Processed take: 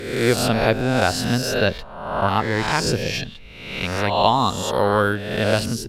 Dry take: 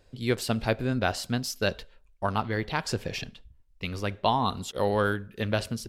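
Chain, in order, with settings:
peak hold with a rise ahead of every peak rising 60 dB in 0.97 s
0:01.21–0:02.28: bass and treble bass +2 dB, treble −4 dB
level +5.5 dB

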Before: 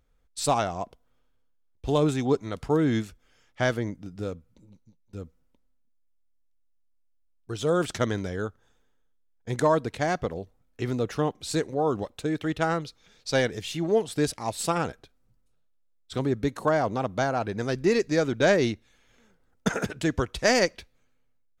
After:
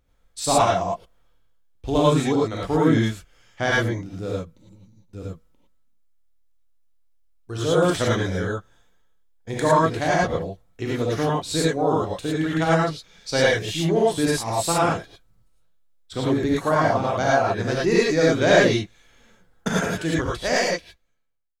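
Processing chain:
fade-out on the ending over 2.00 s
reverb whose tail is shaped and stops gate 130 ms rising, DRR −5.5 dB

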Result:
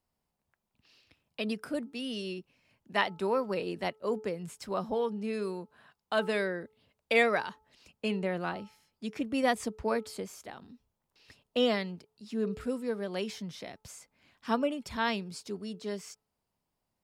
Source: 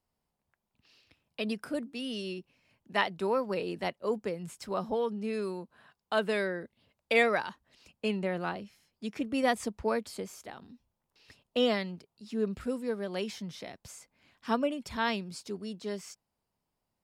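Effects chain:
hum removal 433.5 Hz, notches 3

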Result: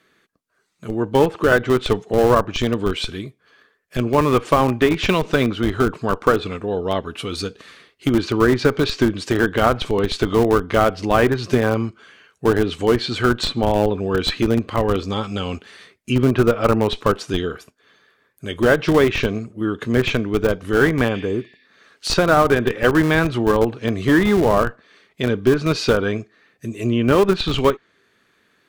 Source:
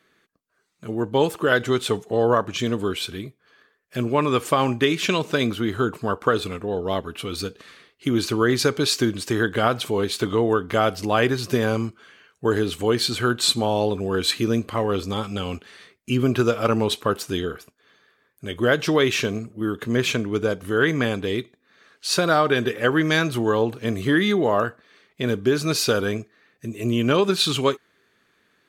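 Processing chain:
treble cut that deepens with the level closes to 2,000 Hz, closed at −15.5 dBFS
in parallel at −4 dB: comparator with hysteresis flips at −17 dBFS
on the sum: healed spectral selection 0:21.16–0:21.66, 1,700–5,700 Hz both
level +3 dB

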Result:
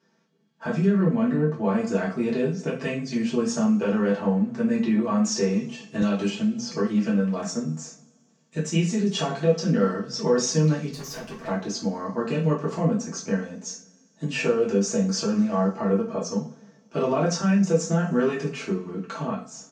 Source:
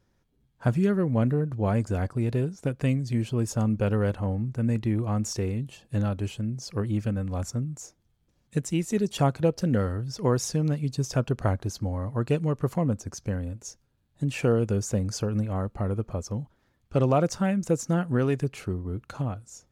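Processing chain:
0:07.73–0:08.59: gain on one half-wave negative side −3 dB
elliptic band-pass filter 170–6,600 Hz, stop band 40 dB
comb filter 4.5 ms, depth 63%
brickwall limiter −19.5 dBFS, peak gain reduction 9 dB
mains-hum notches 60/120/180/240 Hz
0:10.90–0:11.48: tube saturation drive 39 dB, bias 0.75
convolution reverb, pre-delay 3 ms, DRR −6 dB
0:06.02–0:06.72: multiband upward and downward compressor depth 70%

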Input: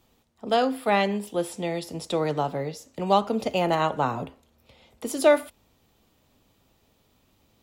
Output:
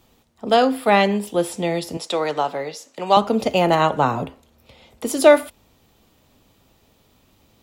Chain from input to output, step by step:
0:01.97–0:03.17: meter weighting curve A
level +6.5 dB

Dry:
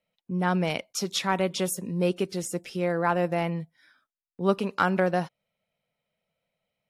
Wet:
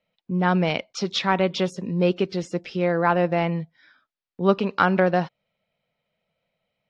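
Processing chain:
low-pass filter 4,900 Hz 24 dB per octave
level +4.5 dB

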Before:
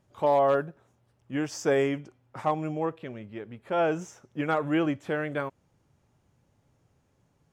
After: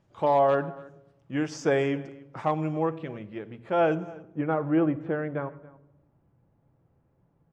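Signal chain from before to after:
Bessel low-pass filter 5,200 Hz, order 2, from 0:03.94 1,100 Hz
slap from a distant wall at 48 metres, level −21 dB
rectangular room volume 4,000 cubic metres, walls furnished, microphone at 0.72 metres
level +1 dB

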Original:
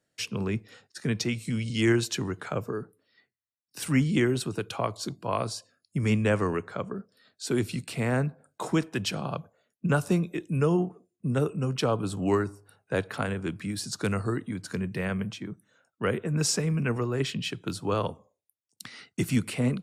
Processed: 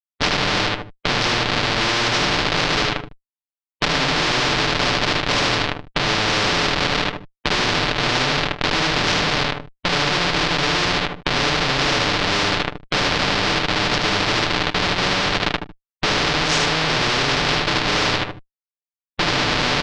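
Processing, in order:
variable-slope delta modulation 64 kbit/s
dynamic equaliser 360 Hz, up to +6 dB, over −43 dBFS, Q 6
convolution reverb, pre-delay 3 ms, DRR −8.5 dB
comparator with hysteresis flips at −20 dBFS
low-pass filter 3,800 Hz 24 dB per octave
comb filter 6.8 ms, depth 45%
repeating echo 76 ms, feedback 15%, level −5 dB
every bin compressed towards the loudest bin 4 to 1
level +5 dB

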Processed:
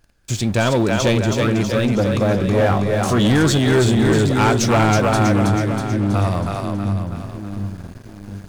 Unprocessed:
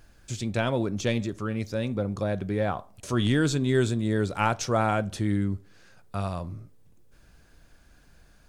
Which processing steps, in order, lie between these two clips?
on a send: echo with a time of its own for lows and highs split 340 Hz, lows 714 ms, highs 322 ms, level −4 dB
on the sum: leveller curve on the samples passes 3
0:02.37–0:03.18: double-tracking delay 21 ms −6.5 dB

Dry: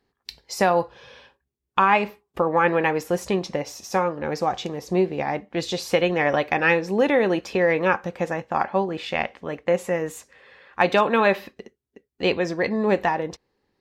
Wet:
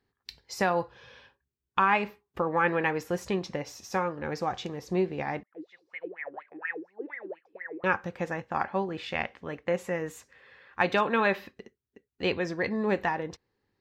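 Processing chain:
graphic EQ with 15 bands 100 Hz +7 dB, 630 Hz −3 dB, 1,600 Hz +3 dB, 10,000 Hz −5 dB
0:05.43–0:07.84: LFO wah 4.2 Hz 300–2,200 Hz, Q 15
level −6 dB

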